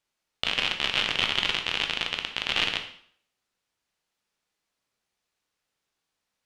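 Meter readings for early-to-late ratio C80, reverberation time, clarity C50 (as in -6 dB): 12.0 dB, 0.60 s, 8.5 dB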